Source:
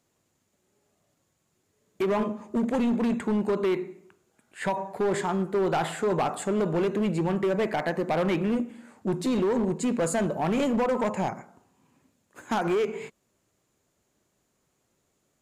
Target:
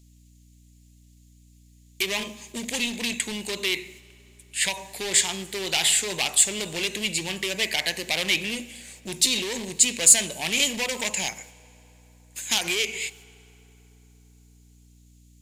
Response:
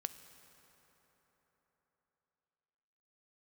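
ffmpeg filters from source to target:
-filter_complex "[0:a]aexciter=amount=10.7:drive=8.6:freq=2.1k,agate=range=-10dB:threshold=-41dB:ratio=16:detection=peak,asplit=2[a][b];[b]highpass=f=610:p=1[c];[1:a]atrim=start_sample=2205[d];[c][d]afir=irnorm=-1:irlink=0,volume=-3.5dB[e];[a][e]amix=inputs=2:normalize=0,aeval=exprs='val(0)+0.00708*(sin(2*PI*60*n/s)+sin(2*PI*2*60*n/s)/2+sin(2*PI*3*60*n/s)/3+sin(2*PI*4*60*n/s)/4+sin(2*PI*5*60*n/s)/5)':c=same,volume=-10dB"

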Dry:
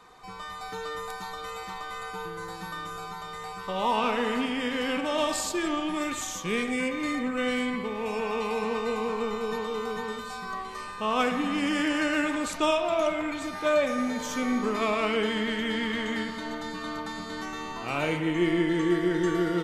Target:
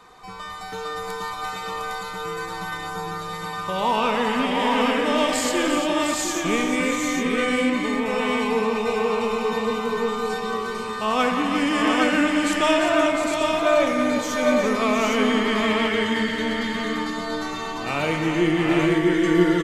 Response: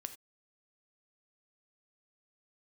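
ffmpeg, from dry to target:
-af "aecho=1:1:176|348|707|808:0.282|0.376|0.473|0.668,volume=4dB"

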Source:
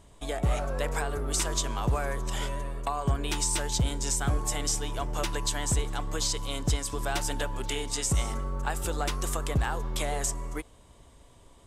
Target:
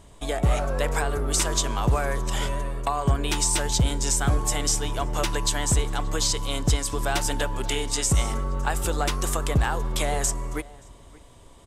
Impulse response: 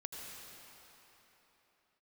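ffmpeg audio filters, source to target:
-filter_complex "[0:a]asplit=2[a][b];[b]adelay=577.3,volume=-21dB,highshelf=f=4k:g=-13[c];[a][c]amix=inputs=2:normalize=0,volume=5dB"

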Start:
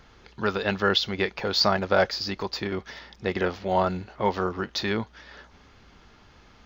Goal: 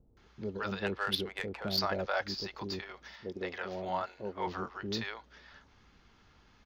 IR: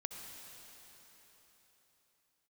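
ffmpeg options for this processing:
-filter_complex "[0:a]asettb=1/sr,asplit=3[a][b][c];[a]atrim=end=0.694[d];[b]atrim=start=0.69:end=1.62,asetpts=PTS-STARTPTS,afade=t=in:d=0.004:c=qsin,afade=t=out:st=0.926:d=0.004:c=qsin,adynamicsmooth=sensitivity=2:basefreq=2.3k[e];[c]atrim=start=1.616[f];[d][e]acrossfade=d=0.004:c1=hsin:c2=qsin[g];[g][f]acrossfade=d=0.004:c1=qsin:c2=hsin,asettb=1/sr,asplit=3[h][i][j];[h]atrim=end=3.144[k];[i]atrim=start=3.14:end=4.47,asetpts=PTS-STARTPTS,afade=t=in:d=0.004:c=qsin,afade=t=out:st=1.326:d=0.004:c=qsin,bass=f=250:g=-8,treble=f=4k:g=-1[l];[j]atrim=start=4.466[m];[k][l]acrossfade=d=0.004:c1=hsin:c2=qsin[n];[n][m]acrossfade=d=0.004:c1=qsin:c2=hsin,acrossover=split=550[o][p];[p]adelay=170[q];[o][q]amix=inputs=2:normalize=0,volume=-8.5dB"

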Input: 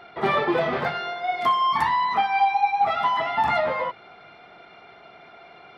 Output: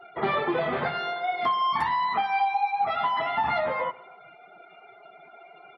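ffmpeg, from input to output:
-filter_complex "[0:a]afftdn=nr=21:nf=-45,acompressor=threshold=-25dB:ratio=2,asplit=2[a][b];[b]adelay=134,lowpass=f=3.4k:p=1,volume=-22dB,asplit=2[c][d];[d]adelay=134,lowpass=f=3.4k:p=1,volume=0.39,asplit=2[e][f];[f]adelay=134,lowpass=f=3.4k:p=1,volume=0.39[g];[a][c][e][g]amix=inputs=4:normalize=0"

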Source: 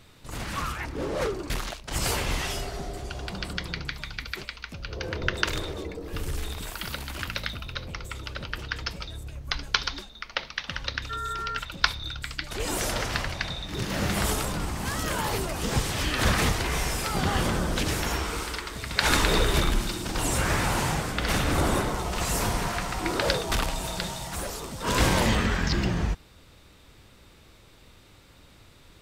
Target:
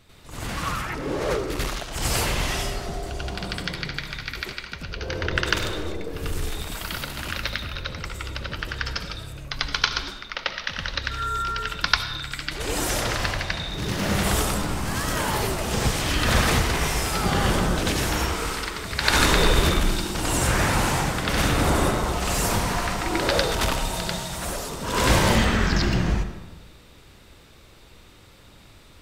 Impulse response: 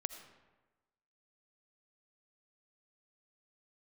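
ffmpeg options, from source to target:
-filter_complex "[0:a]asplit=2[a][b];[1:a]atrim=start_sample=2205,adelay=93[c];[b][c]afir=irnorm=-1:irlink=0,volume=6.5dB[d];[a][d]amix=inputs=2:normalize=0,volume=-3dB"

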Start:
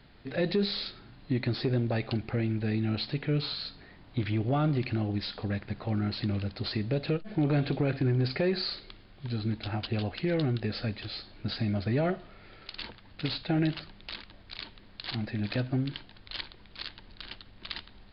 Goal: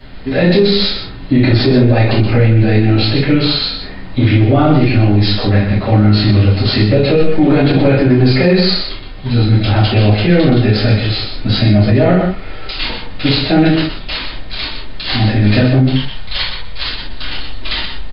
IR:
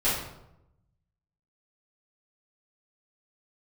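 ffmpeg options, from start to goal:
-filter_complex "[0:a]asettb=1/sr,asplit=3[a][b][c];[a]atrim=end=15.824[d];[b]atrim=start=15.82:end=16.84,asetpts=PTS-STARTPTS,afade=t=in:d=0.004:c=qsin,afade=t=out:st=1.016:d=0.004:c=qsin,equalizer=f=310:w=2.7:g=-12.5[e];[c]atrim=start=16.836[f];[d][e]acrossfade=d=0.004:c1=hsin:c2=qsin[g];[g][f]acrossfade=d=0.004:c1=qsin:c2=hsin,aecho=1:1:124:0.398[h];[1:a]atrim=start_sample=2205,atrim=end_sample=3969[i];[h][i]afir=irnorm=-1:irlink=0,alimiter=level_in=10dB:limit=-1dB:release=50:level=0:latency=1,volume=-1dB"

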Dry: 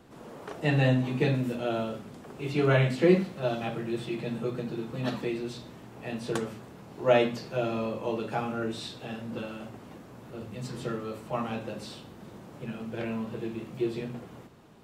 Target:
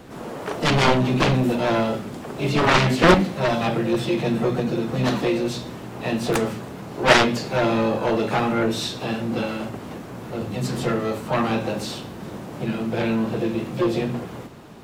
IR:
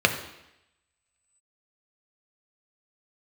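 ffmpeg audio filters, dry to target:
-filter_complex "[0:a]aeval=exprs='0.355*(cos(1*acos(clip(val(0)/0.355,-1,1)))-cos(1*PI/2))+0.178*(cos(7*acos(clip(val(0)/0.355,-1,1)))-cos(7*PI/2))':c=same,asplit=2[a][b];[b]asetrate=66075,aresample=44100,atempo=0.66742,volume=-9dB[c];[a][c]amix=inputs=2:normalize=0,volume=3.5dB"

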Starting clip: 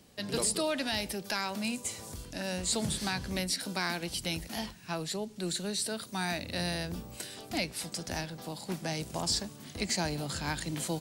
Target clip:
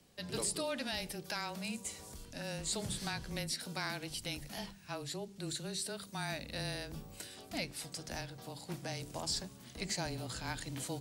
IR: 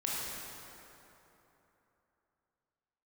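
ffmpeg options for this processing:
-af "afreqshift=-21,bandreject=f=48.65:t=h:w=4,bandreject=f=97.3:t=h:w=4,bandreject=f=145.95:t=h:w=4,bandreject=f=194.6:t=h:w=4,bandreject=f=243.25:t=h:w=4,bandreject=f=291.9:t=h:w=4,bandreject=f=340.55:t=h:w=4,bandreject=f=389.2:t=h:w=4,bandreject=f=437.85:t=h:w=4,volume=-6dB"

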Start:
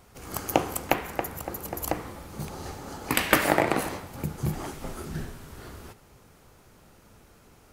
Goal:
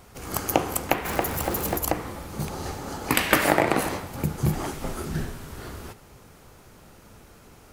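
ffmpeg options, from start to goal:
-filter_complex "[0:a]asettb=1/sr,asplit=3[a][b][c];[a]atrim=end=1.054[d];[b]atrim=start=1.05:end=1.78,asetpts=PTS-STARTPTS,afade=t=in:d=0.004:c=qsin,afade=t=out:st=0.726:d=0.004:c=qsin,aeval=exprs='val(0)+0.5*0.0211*sgn(val(0))':c=same[e];[c]atrim=start=1.776[f];[d][e]acrossfade=d=0.004:c1=hsin:c2=qsin[g];[g][f]acrossfade=d=0.004:c1=qsin:c2=hsin,asplit=2[h][i];[i]alimiter=limit=-13.5dB:level=0:latency=1:release=222,volume=2dB[j];[h][j]amix=inputs=2:normalize=0,volume=-2dB"

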